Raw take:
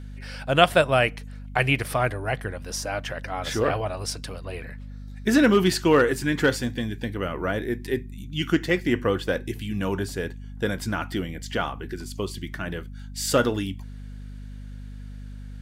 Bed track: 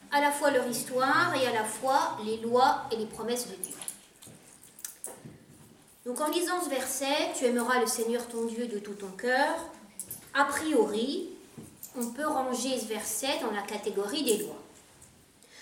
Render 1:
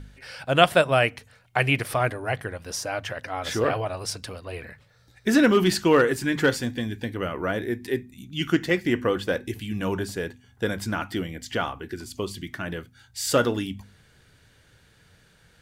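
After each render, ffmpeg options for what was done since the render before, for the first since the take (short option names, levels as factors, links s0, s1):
-af "bandreject=f=50:t=h:w=4,bandreject=f=100:t=h:w=4,bandreject=f=150:t=h:w=4,bandreject=f=200:t=h:w=4,bandreject=f=250:t=h:w=4"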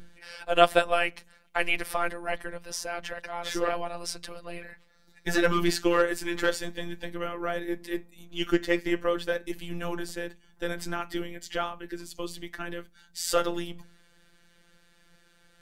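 -filter_complex "[0:a]acrossover=split=210|1400[s0][s1][s2];[s0]aeval=exprs='abs(val(0))':c=same[s3];[s3][s1][s2]amix=inputs=3:normalize=0,afftfilt=real='hypot(re,im)*cos(PI*b)':imag='0':win_size=1024:overlap=0.75"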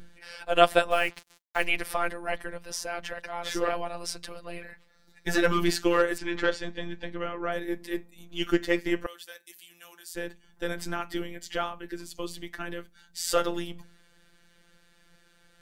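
-filter_complex "[0:a]asplit=3[s0][s1][s2];[s0]afade=t=out:st=0.9:d=0.02[s3];[s1]acrusher=bits=6:mix=0:aa=0.5,afade=t=in:st=0.9:d=0.02,afade=t=out:st=1.65:d=0.02[s4];[s2]afade=t=in:st=1.65:d=0.02[s5];[s3][s4][s5]amix=inputs=3:normalize=0,asettb=1/sr,asplit=3[s6][s7][s8];[s6]atrim=end=6.184[s9];[s7]atrim=start=6.18:end=7.52,asetpts=PTS-STARTPTS,afade=t=in:d=0.004:c=qsin,afade=t=out:st=1.336:d=0.004:c=qsin,lowpass=4600[s10];[s8]atrim=start=7.516[s11];[s9][s10]acrossfade=d=0.004:c1=hsin:c2=qsin[s12];[s12][s11]acrossfade=d=0.004:c1=qsin:c2=hsin,asettb=1/sr,asplit=3[s13][s14][s15];[s13]atrim=end=9.064[s16];[s14]atrim=start=9.06:end=10.15,asetpts=PTS-STARTPTS,afade=t=in:d=0.004:c=qsin,afade=t=out:st=1.086:d=0.004:c=qsin,aderivative[s17];[s15]atrim=start=10.146[s18];[s16][s17]acrossfade=d=0.004:c1=hsin:c2=qsin[s19];[s19][s18]acrossfade=d=0.004:c1=qsin:c2=hsin"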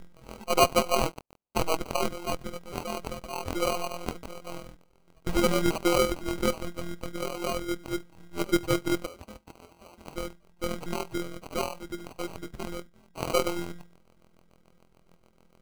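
-af "acrusher=samples=25:mix=1:aa=0.000001,asoftclip=type=hard:threshold=0.282"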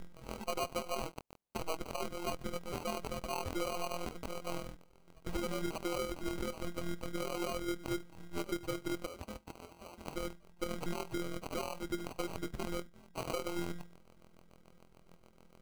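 -af "acompressor=threshold=0.0355:ratio=16,alimiter=level_in=1.06:limit=0.0631:level=0:latency=1:release=90,volume=0.944"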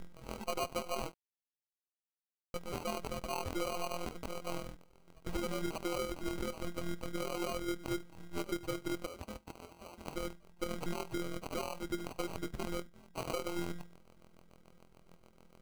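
-filter_complex "[0:a]asplit=3[s0][s1][s2];[s0]atrim=end=1.14,asetpts=PTS-STARTPTS,afade=t=out:st=1.136:d=0.004:c=hsin[s3];[s1]atrim=start=1.14:end=2.54,asetpts=PTS-STARTPTS,volume=0[s4];[s2]atrim=start=2.54,asetpts=PTS-STARTPTS,afade=t=in:d=0.004:c=hsin[s5];[s3][s4][s5]concat=n=3:v=0:a=1"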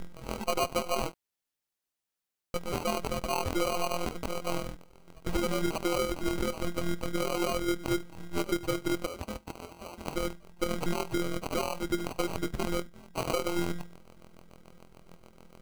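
-af "volume=2.37"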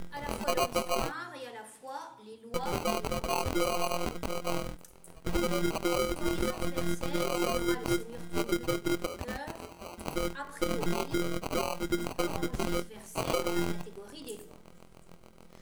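-filter_complex "[1:a]volume=0.168[s0];[0:a][s0]amix=inputs=2:normalize=0"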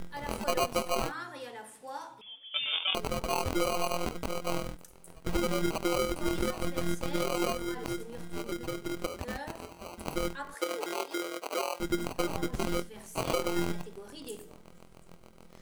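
-filter_complex "[0:a]asettb=1/sr,asplit=3[s0][s1][s2];[s0]atrim=end=2.214[s3];[s1]atrim=start=2.21:end=2.95,asetpts=PTS-STARTPTS,afade=t=in:d=0.004:c=qsin,afade=t=out:st=0.736:d=0.004:c=qsin,lowpass=f=3100:t=q:w=0.5098,lowpass=f=3100:t=q:w=0.6013,lowpass=f=3100:t=q:w=0.9,lowpass=f=3100:t=q:w=2.563,afreqshift=-3600[s4];[s2]atrim=start=2.946[s5];[s3][s4]acrossfade=d=0.004:c1=hsin:c2=qsin[s6];[s6][s5]acrossfade=d=0.004:c1=qsin:c2=hsin,asettb=1/sr,asplit=3[s7][s8][s9];[s7]atrim=end=7.524[s10];[s8]atrim=start=7.52:end=8.97,asetpts=PTS-STARTPTS,afade=t=in:d=0.004:c=qsin,afade=t=out:st=1.446:d=0.004:c=qsin,acompressor=threshold=0.0316:ratio=4:attack=3.2:release=140:knee=1:detection=peak[s11];[s9]atrim=start=8.966[s12];[s10][s11]acrossfade=d=0.004:c1=hsin:c2=qsin[s13];[s13][s12]acrossfade=d=0.004:c1=qsin:c2=hsin,asettb=1/sr,asplit=3[s14][s15][s16];[s14]atrim=end=10.544[s17];[s15]atrim=start=10.54:end=11.8,asetpts=PTS-STARTPTS,afade=t=in:d=0.004:c=qsin,afade=t=out:st=1.256:d=0.004:c=qsin,highpass=f=370:w=0.5412,highpass=f=370:w=1.3066[s18];[s16]atrim=start=11.796[s19];[s17][s18]acrossfade=d=0.004:c1=hsin:c2=qsin[s20];[s20][s19]acrossfade=d=0.004:c1=qsin:c2=hsin"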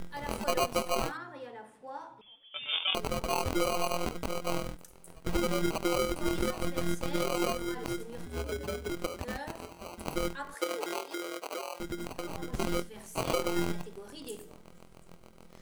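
-filter_complex "[0:a]asettb=1/sr,asplit=3[s0][s1][s2];[s0]atrim=end=1.174[s3];[s1]atrim=start=1.17:end=2.69,asetpts=PTS-STARTPTS,afade=t=in:d=0.004:c=qsin,afade=t=out:st=1.516:d=0.004:c=qsin,lowpass=f=1300:p=1[s4];[s2]atrim=start=2.686[s5];[s3][s4]acrossfade=d=0.004:c1=hsin:c2=qsin[s6];[s6][s5]acrossfade=d=0.004:c1=qsin:c2=hsin,asettb=1/sr,asplit=3[s7][s8][s9];[s7]atrim=end=8.264[s10];[s8]atrim=start=8.26:end=8.9,asetpts=PTS-STARTPTS,afade=t=in:d=0.004:c=qsin,afade=t=out:st=0.636:d=0.004:c=qsin,afreqshift=69[s11];[s9]atrim=start=8.896[s12];[s10][s11]acrossfade=d=0.004:c1=hsin:c2=qsin[s13];[s13][s12]acrossfade=d=0.004:c1=qsin:c2=hsin,asettb=1/sr,asplit=3[s14][s15][s16];[s14]atrim=end=10.984[s17];[s15]atrim=start=10.98:end=12.48,asetpts=PTS-STARTPTS,afade=t=in:d=0.004:c=qsin,afade=t=out:st=1.496:d=0.004:c=qsin,acompressor=threshold=0.0251:ratio=6:attack=3.2:release=140:knee=1:detection=peak[s18];[s16]atrim=start=12.476[s19];[s17][s18]acrossfade=d=0.004:c1=hsin:c2=qsin[s20];[s20][s19]acrossfade=d=0.004:c1=qsin:c2=hsin"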